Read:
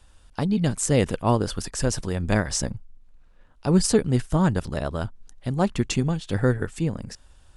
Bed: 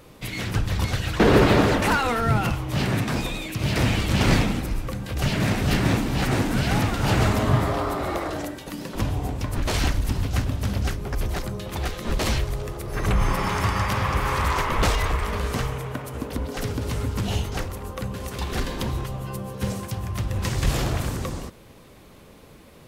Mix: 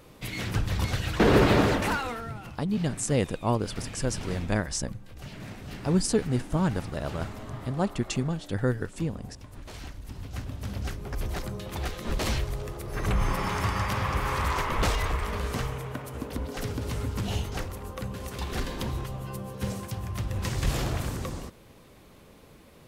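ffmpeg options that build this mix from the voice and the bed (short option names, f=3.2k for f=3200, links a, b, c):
-filter_complex "[0:a]adelay=2200,volume=-5dB[a];[1:a]volume=10.5dB,afade=t=out:st=1.67:d=0.67:silence=0.177828,afade=t=in:st=9.98:d=1.46:silence=0.199526[b];[a][b]amix=inputs=2:normalize=0"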